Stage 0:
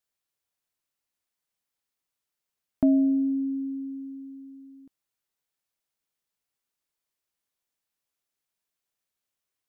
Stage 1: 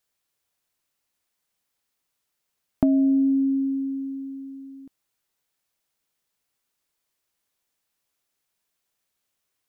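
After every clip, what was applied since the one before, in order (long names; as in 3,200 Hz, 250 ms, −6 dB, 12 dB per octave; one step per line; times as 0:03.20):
downward compressor, threshold −24 dBFS, peak gain reduction 7 dB
level +7 dB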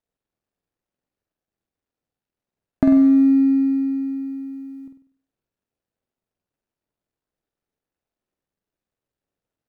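running median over 41 samples
on a send: flutter between parallel walls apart 8.3 metres, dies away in 0.5 s
on the sum: level +3 dB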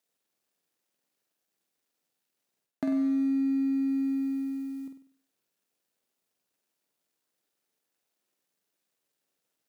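high-pass filter 200 Hz 12 dB per octave
high-shelf EQ 2,200 Hz +11.5 dB
reversed playback
downward compressor 6 to 1, threshold −26 dBFS, peak gain reduction 13.5 dB
reversed playback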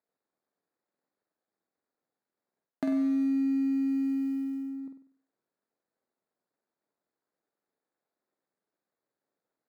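adaptive Wiener filter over 15 samples
low-shelf EQ 160 Hz −7 dB
level +1.5 dB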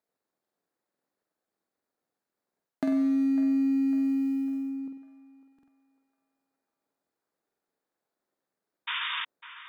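sound drawn into the spectrogram noise, 0:08.87–0:09.25, 910–3,700 Hz −34 dBFS
feedback echo with a band-pass in the loop 551 ms, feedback 50%, band-pass 1,200 Hz, level −12 dB
buffer that repeats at 0:00.41/0:05.54/0:07.47, samples 2,048, times 2
level +2 dB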